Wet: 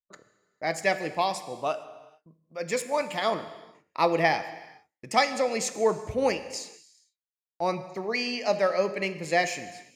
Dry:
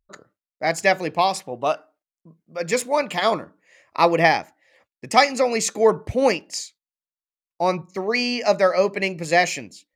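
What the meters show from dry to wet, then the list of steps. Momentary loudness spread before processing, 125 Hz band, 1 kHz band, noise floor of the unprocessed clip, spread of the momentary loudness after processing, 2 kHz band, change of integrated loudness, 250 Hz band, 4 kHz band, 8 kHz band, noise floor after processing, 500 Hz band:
12 LU, -6.5 dB, -6.5 dB, under -85 dBFS, 13 LU, -6.5 dB, -6.5 dB, -6.5 dB, -6.5 dB, -6.5 dB, under -85 dBFS, -6.5 dB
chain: gate -51 dBFS, range -24 dB; non-linear reverb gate 0.48 s falling, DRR 10.5 dB; gain -7 dB

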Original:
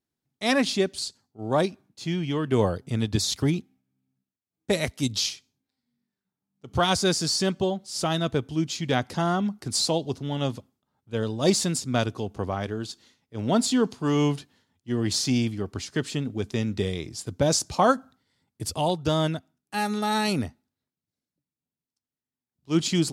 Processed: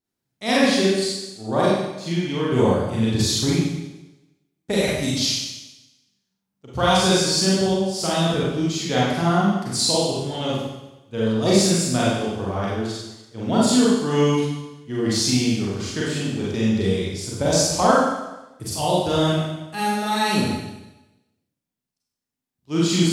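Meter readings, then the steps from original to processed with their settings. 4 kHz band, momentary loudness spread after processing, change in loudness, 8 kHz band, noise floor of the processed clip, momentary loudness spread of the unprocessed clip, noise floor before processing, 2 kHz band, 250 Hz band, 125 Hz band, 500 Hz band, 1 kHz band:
+5.5 dB, 12 LU, +5.0 dB, +5.0 dB, -82 dBFS, 10 LU, under -85 dBFS, +5.0 dB, +5.5 dB, +4.5 dB, +5.5 dB, +5.0 dB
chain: Schroeder reverb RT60 1 s, combs from 32 ms, DRR -7 dB; gain -2.5 dB

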